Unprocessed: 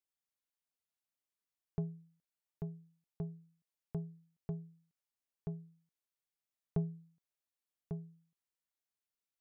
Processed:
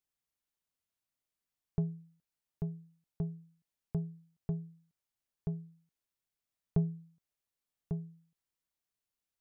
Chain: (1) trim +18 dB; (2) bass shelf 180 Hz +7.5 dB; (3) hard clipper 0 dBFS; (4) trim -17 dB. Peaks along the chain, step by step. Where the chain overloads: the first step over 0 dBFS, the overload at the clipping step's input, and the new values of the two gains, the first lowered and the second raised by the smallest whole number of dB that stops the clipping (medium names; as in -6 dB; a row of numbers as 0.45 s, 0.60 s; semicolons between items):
-4.5 dBFS, -1.5 dBFS, -1.5 dBFS, -18.5 dBFS; nothing clips